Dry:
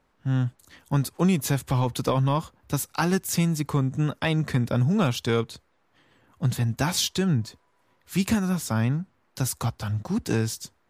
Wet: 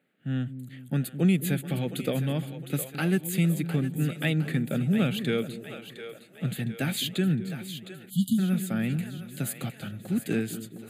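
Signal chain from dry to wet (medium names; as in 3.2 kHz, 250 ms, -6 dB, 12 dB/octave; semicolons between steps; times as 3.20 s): Chebyshev high-pass 160 Hz, order 3; static phaser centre 2.4 kHz, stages 4; two-band feedback delay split 400 Hz, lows 213 ms, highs 710 ms, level -10.5 dB; spectral selection erased 8.10–8.39 s, 270–2900 Hz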